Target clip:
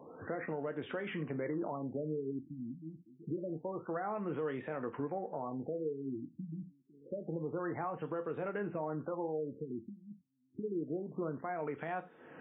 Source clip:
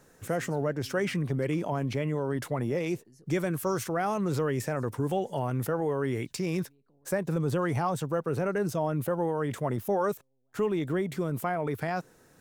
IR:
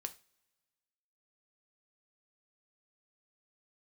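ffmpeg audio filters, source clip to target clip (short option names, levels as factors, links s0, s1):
-filter_complex "[0:a]acompressor=threshold=0.00355:ratio=2,highpass=220,equalizer=f=4200:w=3.9:g=-7[s0];[1:a]atrim=start_sample=2205,afade=t=out:st=0.22:d=0.01,atrim=end_sample=10143,atrim=end_sample=4410[s1];[s0][s1]afir=irnorm=-1:irlink=0,acrossover=split=3100[s2][s3];[s3]acompressor=threshold=0.00112:ratio=4:attack=1:release=60[s4];[s2][s4]amix=inputs=2:normalize=0,alimiter=level_in=6.68:limit=0.0631:level=0:latency=1:release=365,volume=0.15,highshelf=f=10000:g=-9.5,afftfilt=real='re*lt(b*sr/1024,300*pow(3800/300,0.5+0.5*sin(2*PI*0.27*pts/sr)))':imag='im*lt(b*sr/1024,300*pow(3800/300,0.5+0.5*sin(2*PI*0.27*pts/sr)))':win_size=1024:overlap=0.75,volume=4.22"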